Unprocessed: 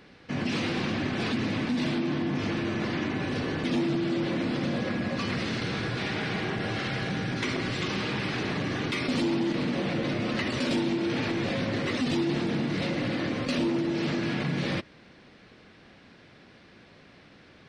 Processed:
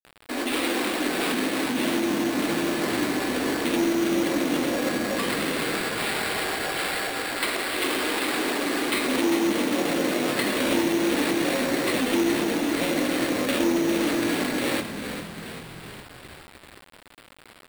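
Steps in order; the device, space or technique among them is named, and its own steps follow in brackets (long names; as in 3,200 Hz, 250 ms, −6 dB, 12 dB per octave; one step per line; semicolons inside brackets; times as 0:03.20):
0:05.84–0:07.74: high-pass filter 470 Hz 12 dB per octave
elliptic high-pass filter 270 Hz, stop band 40 dB
echo with shifted repeats 399 ms, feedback 57%, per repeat −43 Hz, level −8 dB
early 8-bit sampler (sample-rate reduction 6,200 Hz, jitter 0%; bit reduction 8 bits)
level +6 dB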